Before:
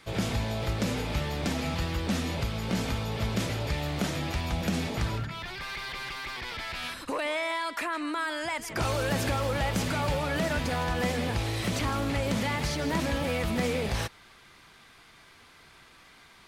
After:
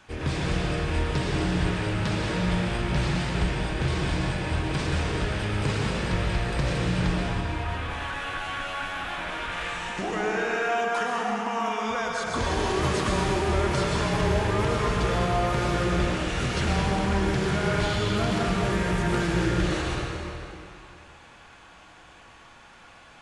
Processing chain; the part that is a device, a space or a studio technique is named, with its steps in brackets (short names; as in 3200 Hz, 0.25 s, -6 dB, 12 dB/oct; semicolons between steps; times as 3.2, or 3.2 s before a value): slowed and reverbed (varispeed -29%; reverb RT60 2.8 s, pre-delay 0.103 s, DRR -2.5 dB)